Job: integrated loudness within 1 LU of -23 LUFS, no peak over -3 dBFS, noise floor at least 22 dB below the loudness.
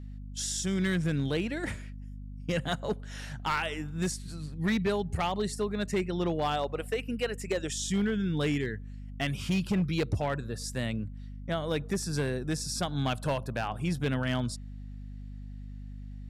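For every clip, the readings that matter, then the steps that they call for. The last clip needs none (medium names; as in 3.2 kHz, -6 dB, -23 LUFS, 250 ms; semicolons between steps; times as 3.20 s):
clipped samples 1.1%; clipping level -22.5 dBFS; hum 50 Hz; highest harmonic 250 Hz; hum level -40 dBFS; loudness -31.5 LUFS; peak level -22.5 dBFS; loudness target -23.0 LUFS
-> clip repair -22.5 dBFS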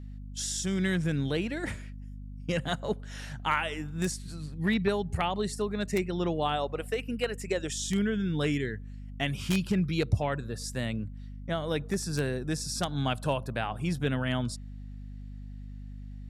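clipped samples 0.0%; hum 50 Hz; highest harmonic 250 Hz; hum level -40 dBFS
-> de-hum 50 Hz, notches 5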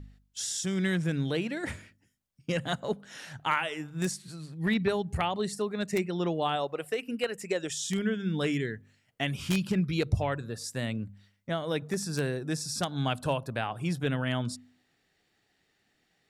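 hum not found; loudness -31.5 LUFS; peak level -13.0 dBFS; loudness target -23.0 LUFS
-> trim +8.5 dB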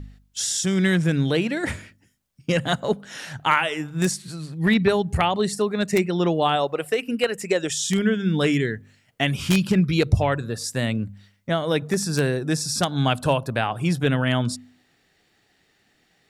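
loudness -23.0 LUFS; peak level -4.5 dBFS; noise floor -65 dBFS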